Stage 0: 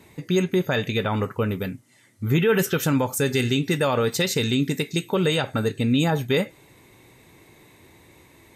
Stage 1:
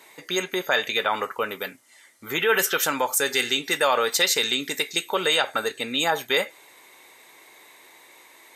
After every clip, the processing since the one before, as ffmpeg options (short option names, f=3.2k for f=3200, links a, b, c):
-af "highpass=700,bandreject=f=2.6k:w=20,volume=5.5dB"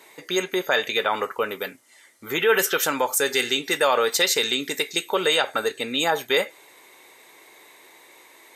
-af "equalizer=f=410:w=1.5:g=3.5"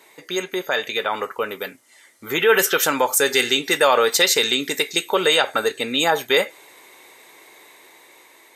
-af "dynaudnorm=f=840:g=5:m=11.5dB,volume=-1dB"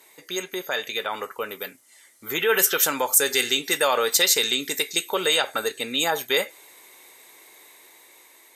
-af "aemphasis=mode=production:type=cd,aeval=exprs='1.58*(cos(1*acos(clip(val(0)/1.58,-1,1)))-cos(1*PI/2))+0.0398*(cos(3*acos(clip(val(0)/1.58,-1,1)))-cos(3*PI/2))':c=same,volume=-5dB"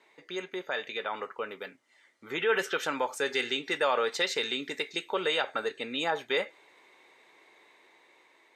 -af "highpass=120,lowpass=3k,volume=-5dB"